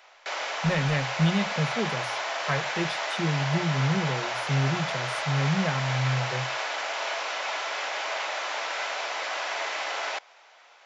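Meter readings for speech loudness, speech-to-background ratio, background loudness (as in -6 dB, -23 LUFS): -29.0 LUFS, 1.0 dB, -30.0 LUFS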